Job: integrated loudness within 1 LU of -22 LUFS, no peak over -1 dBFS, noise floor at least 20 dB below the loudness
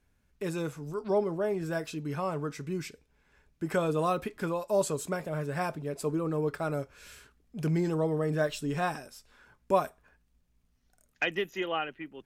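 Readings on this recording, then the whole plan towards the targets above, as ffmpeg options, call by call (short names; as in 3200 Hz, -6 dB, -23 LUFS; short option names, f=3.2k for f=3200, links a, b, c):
loudness -32.0 LUFS; peak -12.5 dBFS; loudness target -22.0 LUFS
-> -af "volume=10dB"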